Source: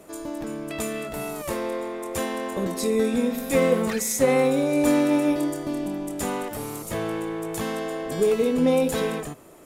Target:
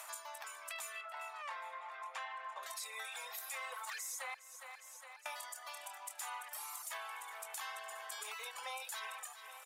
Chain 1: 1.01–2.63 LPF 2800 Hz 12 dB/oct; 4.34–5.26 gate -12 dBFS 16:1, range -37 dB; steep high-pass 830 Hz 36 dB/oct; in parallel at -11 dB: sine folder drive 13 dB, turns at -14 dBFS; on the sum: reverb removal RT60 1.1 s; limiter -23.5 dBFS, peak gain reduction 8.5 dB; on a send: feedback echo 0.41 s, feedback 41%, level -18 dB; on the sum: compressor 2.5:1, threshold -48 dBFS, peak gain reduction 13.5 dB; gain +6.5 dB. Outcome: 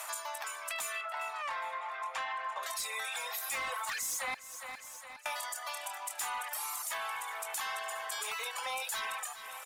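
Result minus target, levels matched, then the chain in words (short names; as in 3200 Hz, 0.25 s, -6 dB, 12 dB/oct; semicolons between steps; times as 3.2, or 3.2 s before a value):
sine folder: distortion +17 dB; compressor: peak gain reduction -5 dB
1.01–2.63 LPF 2800 Hz 12 dB/oct; 4.34–5.26 gate -12 dBFS 16:1, range -37 dB; steep high-pass 830 Hz 36 dB/oct; in parallel at -11 dB: sine folder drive 3 dB, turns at -14 dBFS; on the sum: reverb removal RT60 1.1 s; limiter -23.5 dBFS, peak gain reduction 11 dB; on a send: feedback echo 0.41 s, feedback 41%, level -18 dB; on the sum: compressor 2.5:1, threshold -58 dBFS, peak gain reduction 18.5 dB; gain +6.5 dB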